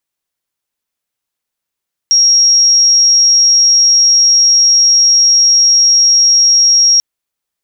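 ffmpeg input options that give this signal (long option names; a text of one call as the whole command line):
ffmpeg -f lavfi -i "sine=frequency=5600:duration=4.89:sample_rate=44100,volume=13.06dB" out.wav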